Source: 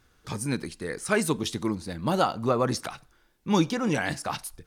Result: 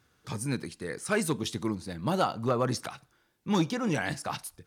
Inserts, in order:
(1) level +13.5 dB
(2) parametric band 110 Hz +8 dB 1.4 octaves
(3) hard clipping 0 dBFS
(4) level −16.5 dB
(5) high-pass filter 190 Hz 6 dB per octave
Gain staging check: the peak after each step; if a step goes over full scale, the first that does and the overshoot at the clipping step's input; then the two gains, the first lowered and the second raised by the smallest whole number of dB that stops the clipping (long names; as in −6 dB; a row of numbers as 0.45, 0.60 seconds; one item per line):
+4.5, +6.0, 0.0, −16.5, −14.5 dBFS
step 1, 6.0 dB
step 1 +7.5 dB, step 4 −10.5 dB